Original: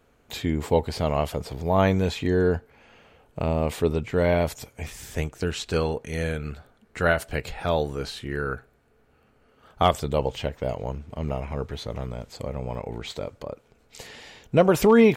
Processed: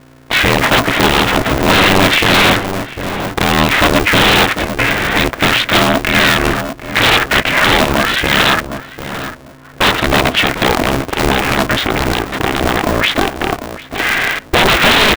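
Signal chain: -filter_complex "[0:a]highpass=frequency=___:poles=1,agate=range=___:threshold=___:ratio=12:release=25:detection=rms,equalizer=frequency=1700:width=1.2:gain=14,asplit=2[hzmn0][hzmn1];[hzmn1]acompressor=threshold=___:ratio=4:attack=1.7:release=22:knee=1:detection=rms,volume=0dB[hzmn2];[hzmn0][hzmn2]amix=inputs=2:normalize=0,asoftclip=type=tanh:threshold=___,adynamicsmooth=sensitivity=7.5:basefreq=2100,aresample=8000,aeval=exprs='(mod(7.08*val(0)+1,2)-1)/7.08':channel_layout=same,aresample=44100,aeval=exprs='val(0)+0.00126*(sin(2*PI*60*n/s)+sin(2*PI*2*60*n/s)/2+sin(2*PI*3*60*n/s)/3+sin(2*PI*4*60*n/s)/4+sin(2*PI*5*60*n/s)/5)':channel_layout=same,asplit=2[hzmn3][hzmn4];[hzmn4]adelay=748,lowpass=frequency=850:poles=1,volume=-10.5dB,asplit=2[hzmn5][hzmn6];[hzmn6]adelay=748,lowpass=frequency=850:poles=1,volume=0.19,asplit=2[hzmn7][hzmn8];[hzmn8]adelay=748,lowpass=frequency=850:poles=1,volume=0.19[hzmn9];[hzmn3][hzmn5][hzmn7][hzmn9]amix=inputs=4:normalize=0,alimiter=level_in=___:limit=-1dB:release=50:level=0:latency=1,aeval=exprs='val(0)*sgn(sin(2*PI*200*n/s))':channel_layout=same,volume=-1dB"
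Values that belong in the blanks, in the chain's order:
120, -15dB, -49dB, -34dB, -11dB, 17.5dB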